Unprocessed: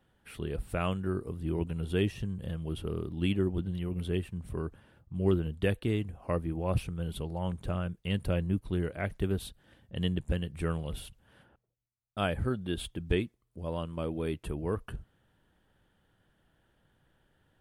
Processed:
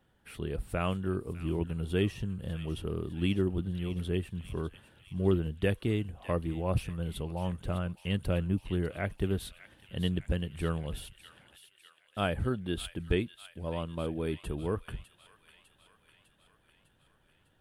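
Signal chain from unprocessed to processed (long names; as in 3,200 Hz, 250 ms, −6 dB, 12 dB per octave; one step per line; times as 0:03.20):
delay with a high-pass on its return 602 ms, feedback 63%, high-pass 1,900 Hz, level −11 dB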